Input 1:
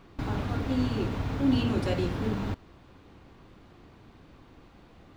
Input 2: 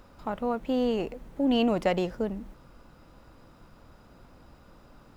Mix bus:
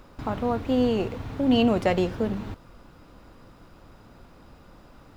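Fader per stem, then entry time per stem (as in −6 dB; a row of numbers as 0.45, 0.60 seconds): −4.5, +2.5 decibels; 0.00, 0.00 seconds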